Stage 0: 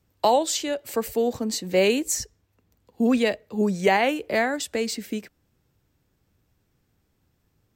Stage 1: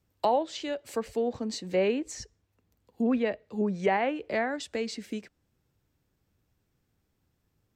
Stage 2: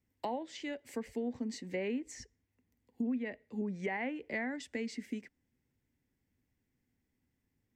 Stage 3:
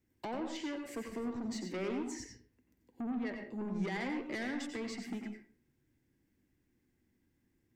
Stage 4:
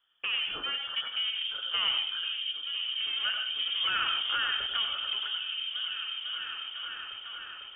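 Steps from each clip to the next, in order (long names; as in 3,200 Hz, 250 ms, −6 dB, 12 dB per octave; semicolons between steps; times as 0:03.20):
treble cut that deepens with the level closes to 2,100 Hz, closed at −18 dBFS; level −5.5 dB
thirty-one-band graphic EQ 250 Hz +11 dB, 630 Hz −4 dB, 1,250 Hz −8 dB, 2,000 Hz +10 dB, 4,000 Hz −5 dB; downward compressor 6 to 1, threshold −24 dBFS, peak gain reduction 10 dB; level −8 dB
hollow resonant body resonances 330/1,600 Hz, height 10 dB, ringing for 45 ms; soft clipping −36.5 dBFS, distortion −9 dB; convolution reverb RT60 0.45 s, pre-delay 85 ms, DRR 4 dB; level +1 dB
graphic EQ with 10 bands 500 Hz +10 dB, 1,000 Hz +4 dB, 2,000 Hz +10 dB; echo whose low-pass opens from repeat to repeat 501 ms, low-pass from 200 Hz, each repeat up 1 octave, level 0 dB; voice inversion scrambler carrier 3,400 Hz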